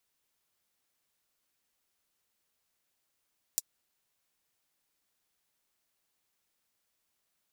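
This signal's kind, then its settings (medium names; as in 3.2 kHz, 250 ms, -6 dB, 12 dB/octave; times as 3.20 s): closed hi-hat, high-pass 6 kHz, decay 0.04 s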